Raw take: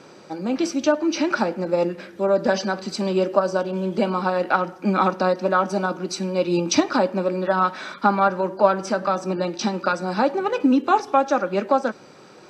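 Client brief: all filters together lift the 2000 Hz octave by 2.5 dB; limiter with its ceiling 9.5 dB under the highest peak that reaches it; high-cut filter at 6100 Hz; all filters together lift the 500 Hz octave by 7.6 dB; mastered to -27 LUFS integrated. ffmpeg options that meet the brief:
-af "lowpass=6.1k,equalizer=f=500:t=o:g=9,equalizer=f=2k:t=o:g=3,volume=-8.5dB,alimiter=limit=-15dB:level=0:latency=1"

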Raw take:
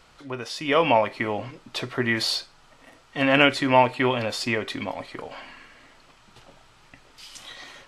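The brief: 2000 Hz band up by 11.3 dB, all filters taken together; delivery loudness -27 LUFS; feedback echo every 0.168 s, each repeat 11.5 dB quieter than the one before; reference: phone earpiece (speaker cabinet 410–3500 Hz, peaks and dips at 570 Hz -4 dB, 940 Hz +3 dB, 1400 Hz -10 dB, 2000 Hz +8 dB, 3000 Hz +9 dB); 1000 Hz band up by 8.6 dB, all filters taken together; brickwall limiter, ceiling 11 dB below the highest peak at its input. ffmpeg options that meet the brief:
-af "equalizer=f=1k:t=o:g=8,equalizer=f=2k:t=o:g=6,alimiter=limit=-7.5dB:level=0:latency=1,highpass=410,equalizer=f=570:t=q:w=4:g=-4,equalizer=f=940:t=q:w=4:g=3,equalizer=f=1.4k:t=q:w=4:g=-10,equalizer=f=2k:t=q:w=4:g=8,equalizer=f=3k:t=q:w=4:g=9,lowpass=f=3.5k:w=0.5412,lowpass=f=3.5k:w=1.3066,aecho=1:1:168|336|504:0.266|0.0718|0.0194,volume=-8.5dB"

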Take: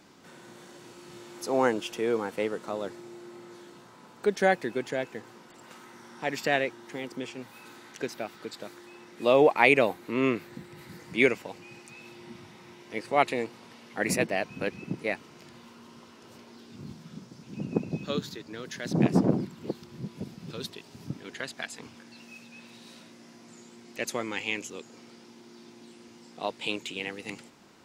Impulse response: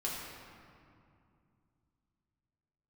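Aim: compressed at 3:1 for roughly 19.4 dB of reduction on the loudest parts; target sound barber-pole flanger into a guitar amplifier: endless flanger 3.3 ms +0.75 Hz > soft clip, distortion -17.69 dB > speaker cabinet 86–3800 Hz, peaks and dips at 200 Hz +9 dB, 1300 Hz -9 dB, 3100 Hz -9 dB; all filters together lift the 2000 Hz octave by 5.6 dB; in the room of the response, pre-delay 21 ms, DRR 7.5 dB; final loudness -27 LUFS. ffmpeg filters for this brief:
-filter_complex "[0:a]equalizer=f=2k:t=o:g=9,acompressor=threshold=-37dB:ratio=3,asplit=2[a][b];[1:a]atrim=start_sample=2205,adelay=21[c];[b][c]afir=irnorm=-1:irlink=0,volume=-11dB[d];[a][d]amix=inputs=2:normalize=0,asplit=2[e][f];[f]adelay=3.3,afreqshift=0.75[g];[e][g]amix=inputs=2:normalize=1,asoftclip=threshold=-30.5dB,highpass=86,equalizer=f=200:t=q:w=4:g=9,equalizer=f=1.3k:t=q:w=4:g=-9,equalizer=f=3.1k:t=q:w=4:g=-9,lowpass=f=3.8k:w=0.5412,lowpass=f=3.8k:w=1.3066,volume=16.5dB"

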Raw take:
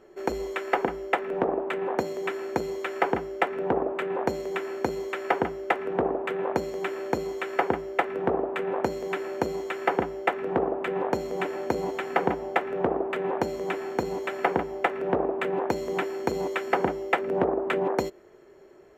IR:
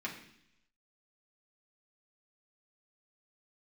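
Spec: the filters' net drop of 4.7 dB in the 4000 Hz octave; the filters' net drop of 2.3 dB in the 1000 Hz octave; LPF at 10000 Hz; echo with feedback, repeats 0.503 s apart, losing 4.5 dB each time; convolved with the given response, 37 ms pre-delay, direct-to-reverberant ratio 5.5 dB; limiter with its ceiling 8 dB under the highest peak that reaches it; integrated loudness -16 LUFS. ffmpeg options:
-filter_complex "[0:a]lowpass=10k,equalizer=f=1k:t=o:g=-3,equalizer=f=4k:t=o:g=-6.5,alimiter=limit=-17.5dB:level=0:latency=1,aecho=1:1:503|1006|1509|2012|2515|3018|3521|4024|4527:0.596|0.357|0.214|0.129|0.0772|0.0463|0.0278|0.0167|0.01,asplit=2[a][b];[1:a]atrim=start_sample=2205,adelay=37[c];[b][c]afir=irnorm=-1:irlink=0,volume=-8dB[d];[a][d]amix=inputs=2:normalize=0,volume=14dB"

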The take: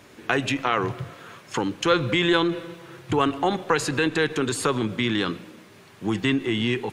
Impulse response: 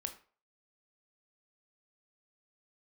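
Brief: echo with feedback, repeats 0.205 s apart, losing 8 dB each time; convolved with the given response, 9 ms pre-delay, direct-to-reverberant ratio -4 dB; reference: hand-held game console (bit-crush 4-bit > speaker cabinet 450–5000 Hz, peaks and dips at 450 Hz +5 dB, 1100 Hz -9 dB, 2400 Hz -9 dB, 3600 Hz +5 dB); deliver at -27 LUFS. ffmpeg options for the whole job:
-filter_complex "[0:a]aecho=1:1:205|410|615|820|1025:0.398|0.159|0.0637|0.0255|0.0102,asplit=2[a][b];[1:a]atrim=start_sample=2205,adelay=9[c];[b][c]afir=irnorm=-1:irlink=0,volume=5.5dB[d];[a][d]amix=inputs=2:normalize=0,acrusher=bits=3:mix=0:aa=0.000001,highpass=450,equalizer=f=450:t=q:w=4:g=5,equalizer=f=1.1k:t=q:w=4:g=-9,equalizer=f=2.4k:t=q:w=4:g=-9,equalizer=f=3.6k:t=q:w=4:g=5,lowpass=f=5k:w=0.5412,lowpass=f=5k:w=1.3066,volume=-7dB"

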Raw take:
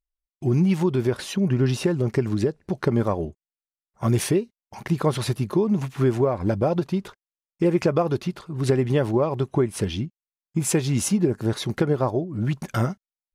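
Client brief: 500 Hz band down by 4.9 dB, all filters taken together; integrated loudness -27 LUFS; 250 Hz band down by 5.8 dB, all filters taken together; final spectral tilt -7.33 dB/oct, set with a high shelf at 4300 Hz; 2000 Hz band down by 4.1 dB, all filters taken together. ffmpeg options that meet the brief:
-af "equalizer=f=250:t=o:g=-8,equalizer=f=500:t=o:g=-3,equalizer=f=2k:t=o:g=-3.5,highshelf=f=4.3k:g=-8,volume=1dB"

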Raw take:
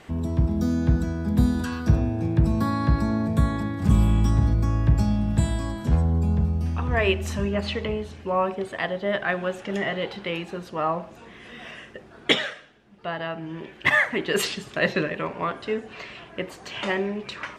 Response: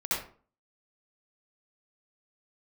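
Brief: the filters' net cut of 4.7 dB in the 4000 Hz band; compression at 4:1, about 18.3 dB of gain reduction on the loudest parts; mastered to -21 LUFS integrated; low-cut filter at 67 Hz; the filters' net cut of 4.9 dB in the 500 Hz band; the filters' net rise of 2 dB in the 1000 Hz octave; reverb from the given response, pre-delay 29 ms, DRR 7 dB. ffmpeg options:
-filter_complex "[0:a]highpass=67,equalizer=f=500:t=o:g=-8,equalizer=f=1k:t=o:g=5,equalizer=f=4k:t=o:g=-7,acompressor=threshold=-39dB:ratio=4,asplit=2[a][b];[1:a]atrim=start_sample=2205,adelay=29[c];[b][c]afir=irnorm=-1:irlink=0,volume=-15dB[d];[a][d]amix=inputs=2:normalize=0,volume=18.5dB"

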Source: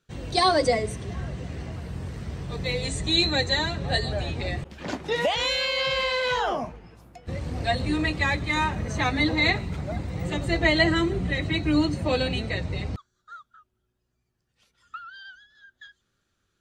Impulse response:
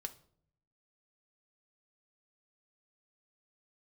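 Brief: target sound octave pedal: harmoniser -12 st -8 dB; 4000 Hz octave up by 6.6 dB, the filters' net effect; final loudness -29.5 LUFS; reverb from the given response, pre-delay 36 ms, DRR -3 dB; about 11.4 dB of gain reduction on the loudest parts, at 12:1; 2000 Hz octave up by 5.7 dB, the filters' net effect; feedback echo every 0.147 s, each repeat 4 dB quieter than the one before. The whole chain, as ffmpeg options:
-filter_complex "[0:a]equalizer=f=2k:t=o:g=5,equalizer=f=4k:t=o:g=6,acompressor=threshold=-23dB:ratio=12,aecho=1:1:147|294|441|588|735|882|1029|1176|1323:0.631|0.398|0.25|0.158|0.0994|0.0626|0.0394|0.0249|0.0157,asplit=2[a][b];[1:a]atrim=start_sample=2205,adelay=36[c];[b][c]afir=irnorm=-1:irlink=0,volume=5.5dB[d];[a][d]amix=inputs=2:normalize=0,asplit=2[e][f];[f]asetrate=22050,aresample=44100,atempo=2,volume=-8dB[g];[e][g]amix=inputs=2:normalize=0,volume=-8.5dB"

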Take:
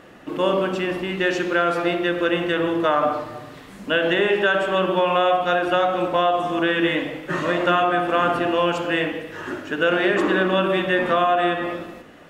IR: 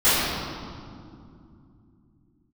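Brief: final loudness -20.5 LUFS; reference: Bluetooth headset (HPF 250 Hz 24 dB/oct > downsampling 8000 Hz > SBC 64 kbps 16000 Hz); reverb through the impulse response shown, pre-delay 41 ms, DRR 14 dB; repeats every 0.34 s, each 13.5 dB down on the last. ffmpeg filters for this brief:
-filter_complex "[0:a]aecho=1:1:340|680:0.211|0.0444,asplit=2[a][b];[1:a]atrim=start_sample=2205,adelay=41[c];[b][c]afir=irnorm=-1:irlink=0,volume=-35.5dB[d];[a][d]amix=inputs=2:normalize=0,highpass=f=250:w=0.5412,highpass=f=250:w=1.3066,aresample=8000,aresample=44100,volume=0.5dB" -ar 16000 -c:a sbc -b:a 64k

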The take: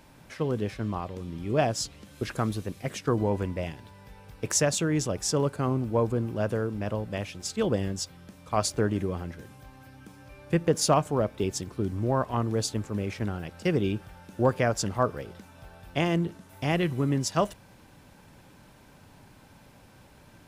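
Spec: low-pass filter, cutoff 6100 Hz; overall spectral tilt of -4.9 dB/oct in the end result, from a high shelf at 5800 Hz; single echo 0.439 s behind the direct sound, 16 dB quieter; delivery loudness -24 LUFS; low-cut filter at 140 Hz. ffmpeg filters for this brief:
-af "highpass=140,lowpass=6.1k,highshelf=f=5.8k:g=3.5,aecho=1:1:439:0.158,volume=5.5dB"

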